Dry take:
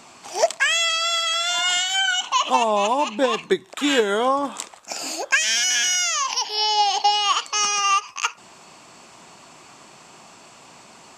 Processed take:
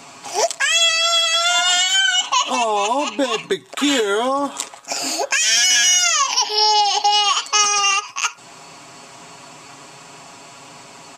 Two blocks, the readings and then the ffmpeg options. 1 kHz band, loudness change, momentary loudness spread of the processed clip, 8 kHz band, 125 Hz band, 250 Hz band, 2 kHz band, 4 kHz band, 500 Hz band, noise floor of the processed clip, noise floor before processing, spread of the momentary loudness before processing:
+2.0 dB, +4.0 dB, 11 LU, +6.0 dB, can't be measured, +2.5 dB, +3.0 dB, +5.0 dB, +1.0 dB, −42 dBFS, −48 dBFS, 9 LU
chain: -filter_complex "[0:a]aecho=1:1:7.2:0.68,acrossover=split=3700[link_01][link_02];[link_01]alimiter=limit=-14.5dB:level=0:latency=1:release=251[link_03];[link_03][link_02]amix=inputs=2:normalize=0,volume=4.5dB"

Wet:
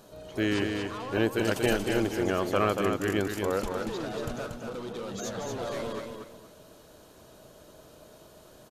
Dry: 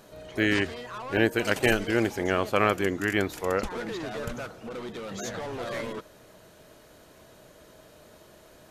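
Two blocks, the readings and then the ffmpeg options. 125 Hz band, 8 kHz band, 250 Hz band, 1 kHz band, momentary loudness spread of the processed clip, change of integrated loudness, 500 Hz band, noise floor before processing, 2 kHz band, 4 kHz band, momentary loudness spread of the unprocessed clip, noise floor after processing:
−0.5 dB, 0.0 dB, −0.5 dB, −2.0 dB, 11 LU, −2.0 dB, −0.5 dB, −54 dBFS, −6.0 dB, −2.0 dB, 14 LU, −54 dBFS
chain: -filter_complex "[0:a]equalizer=frequency=2000:width=2.2:gain=-8,asplit=2[link_01][link_02];[link_02]asoftclip=type=tanh:threshold=-25.5dB,volume=-6dB[link_03];[link_01][link_03]amix=inputs=2:normalize=0,aecho=1:1:234|468|702:0.562|0.146|0.038,volume=-4dB"

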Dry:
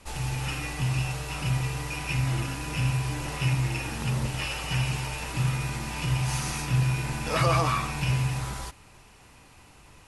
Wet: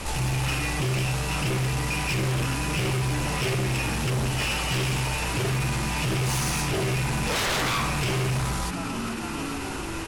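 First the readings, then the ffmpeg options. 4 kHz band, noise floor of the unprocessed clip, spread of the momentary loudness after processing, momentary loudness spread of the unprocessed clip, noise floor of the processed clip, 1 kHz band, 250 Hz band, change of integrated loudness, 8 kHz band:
+5.5 dB, −53 dBFS, 5 LU, 6 LU, −32 dBFS, +2.5 dB, +5.0 dB, +2.5 dB, +6.0 dB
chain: -filter_complex "[0:a]asplit=7[link_01][link_02][link_03][link_04][link_05][link_06][link_07];[link_02]adelay=441,afreqshift=50,volume=-20.5dB[link_08];[link_03]adelay=882,afreqshift=100,volume=-24.2dB[link_09];[link_04]adelay=1323,afreqshift=150,volume=-28dB[link_10];[link_05]adelay=1764,afreqshift=200,volume=-31.7dB[link_11];[link_06]adelay=2205,afreqshift=250,volume=-35.5dB[link_12];[link_07]adelay=2646,afreqshift=300,volume=-39.2dB[link_13];[link_01][link_08][link_09][link_10][link_11][link_12][link_13]amix=inputs=7:normalize=0,aeval=exprs='0.282*sin(PI/2*5.62*val(0)/0.282)':channel_layout=same,alimiter=limit=-22dB:level=0:latency=1:release=56"

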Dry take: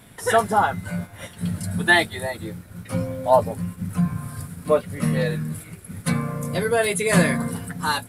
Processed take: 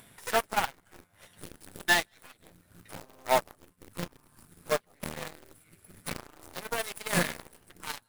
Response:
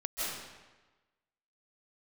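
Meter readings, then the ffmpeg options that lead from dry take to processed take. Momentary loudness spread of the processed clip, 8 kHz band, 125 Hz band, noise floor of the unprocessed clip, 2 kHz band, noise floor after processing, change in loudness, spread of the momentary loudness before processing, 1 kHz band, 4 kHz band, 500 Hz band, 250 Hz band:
21 LU, −6.5 dB, −19.0 dB, −45 dBFS, −8.5 dB, −67 dBFS, −8.5 dB, 14 LU, −9.5 dB, −5.5 dB, −12.0 dB, −16.5 dB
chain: -filter_complex "[0:a]acrusher=bits=4:mode=log:mix=0:aa=0.000001,asplit=2[link_01][link_02];[link_02]equalizer=frequency=6800:width=0.31:gain=5[link_03];[1:a]atrim=start_sample=2205,afade=type=out:start_time=0.22:duration=0.01,atrim=end_sample=10143[link_04];[link_03][link_04]afir=irnorm=-1:irlink=0,volume=-22.5dB[link_05];[link_01][link_05]amix=inputs=2:normalize=0,aeval=exprs='0.668*(cos(1*acos(clip(val(0)/0.668,-1,1)))-cos(1*PI/2))+0.0422*(cos(3*acos(clip(val(0)/0.668,-1,1)))-cos(3*PI/2))+0.0596*(cos(6*acos(clip(val(0)/0.668,-1,1)))-cos(6*PI/2))+0.0841*(cos(7*acos(clip(val(0)/0.668,-1,1)))-cos(7*PI/2))+0.0133*(cos(8*acos(clip(val(0)/0.668,-1,1)))-cos(8*PI/2))':channel_layout=same,lowshelf=frequency=470:gain=-6,acompressor=mode=upward:threshold=-31dB:ratio=2.5,volume=-6.5dB"

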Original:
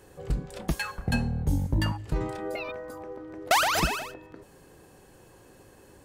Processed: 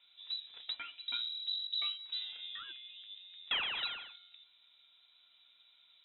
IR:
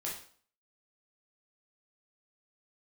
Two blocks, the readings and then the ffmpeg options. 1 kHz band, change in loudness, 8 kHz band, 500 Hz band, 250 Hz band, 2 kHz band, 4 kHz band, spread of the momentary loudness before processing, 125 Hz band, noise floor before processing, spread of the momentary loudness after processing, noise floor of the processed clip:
−20.5 dB, −9.0 dB, below −40 dB, −28.5 dB, below −35 dB, −11.5 dB, +1.0 dB, 17 LU, below −40 dB, −55 dBFS, 15 LU, −67 dBFS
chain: -af "flanger=delay=6.9:depth=4.1:regen=63:speed=1.8:shape=triangular,lowpass=frequency=3400:width_type=q:width=0.5098,lowpass=frequency=3400:width_type=q:width=0.6013,lowpass=frequency=3400:width_type=q:width=0.9,lowpass=frequency=3400:width_type=q:width=2.563,afreqshift=-4000,volume=-7.5dB"

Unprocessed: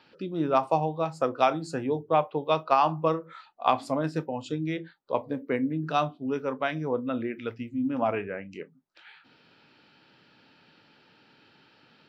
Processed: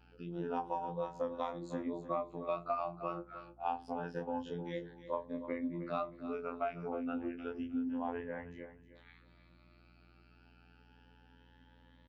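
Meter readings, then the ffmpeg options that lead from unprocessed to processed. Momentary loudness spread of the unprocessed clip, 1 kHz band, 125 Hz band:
10 LU, −12.5 dB, −13.5 dB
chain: -filter_complex "[0:a]afftfilt=real='re*pow(10,13/40*sin(2*PI*(1.1*log(max(b,1)*sr/1024/100)/log(2)-(0.28)*(pts-256)/sr)))':imag='im*pow(10,13/40*sin(2*PI*(1.1*log(max(b,1)*sr/1024/100)/log(2)-(0.28)*(pts-256)/sr)))':win_size=1024:overlap=0.75,flanger=delay=15.5:depth=7.4:speed=1.8,afftfilt=real='hypot(re,im)*cos(PI*b)':imag='0':win_size=2048:overlap=0.75,acompressor=threshold=-32dB:ratio=8,aemphasis=mode=reproduction:type=75kf,bandreject=frequency=60.79:width_type=h:width=4,bandreject=frequency=121.58:width_type=h:width=4,bandreject=frequency=182.37:width_type=h:width=4,bandreject=frequency=243.16:width_type=h:width=4,bandreject=frequency=303.95:width_type=h:width=4,bandreject=frequency=364.74:width_type=h:width=4,bandreject=frequency=425.53:width_type=h:width=4,asplit=2[link_01][link_02];[link_02]aecho=0:1:310|620|930:0.224|0.0582|0.0151[link_03];[link_01][link_03]amix=inputs=2:normalize=0,adynamicequalizer=threshold=0.00398:dfrequency=820:dqfactor=1.1:tfrequency=820:tqfactor=1.1:attack=5:release=100:ratio=0.375:range=1.5:mode=boostabove:tftype=bell,aeval=exprs='val(0)+0.000891*(sin(2*PI*60*n/s)+sin(2*PI*2*60*n/s)/2+sin(2*PI*3*60*n/s)/3+sin(2*PI*4*60*n/s)/4+sin(2*PI*5*60*n/s)/5)':channel_layout=same,volume=-2dB"

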